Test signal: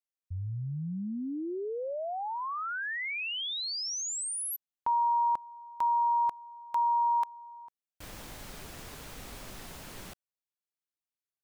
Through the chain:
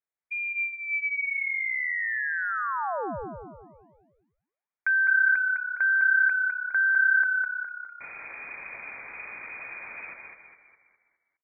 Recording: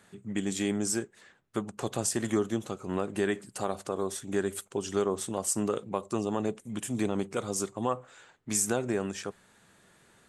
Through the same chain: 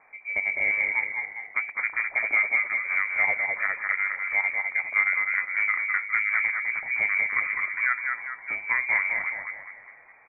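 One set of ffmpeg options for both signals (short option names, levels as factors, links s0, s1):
-filter_complex "[0:a]asplit=7[s0][s1][s2][s3][s4][s5][s6];[s1]adelay=205,afreqshift=33,volume=0.631[s7];[s2]adelay=410,afreqshift=66,volume=0.292[s8];[s3]adelay=615,afreqshift=99,volume=0.133[s9];[s4]adelay=820,afreqshift=132,volume=0.0617[s10];[s5]adelay=1025,afreqshift=165,volume=0.0282[s11];[s6]adelay=1230,afreqshift=198,volume=0.013[s12];[s0][s7][s8][s9][s10][s11][s12]amix=inputs=7:normalize=0,lowpass=f=2100:t=q:w=0.5098,lowpass=f=2100:t=q:w=0.6013,lowpass=f=2100:t=q:w=0.9,lowpass=f=2100:t=q:w=2.563,afreqshift=-2500,volume=1.58"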